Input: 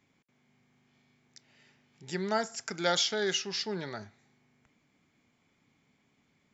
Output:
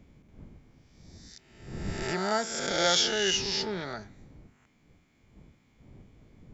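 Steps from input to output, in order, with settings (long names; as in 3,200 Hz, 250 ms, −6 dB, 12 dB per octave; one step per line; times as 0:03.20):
peak hold with a rise ahead of every peak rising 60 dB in 1.18 s
wind on the microphone 180 Hz −47 dBFS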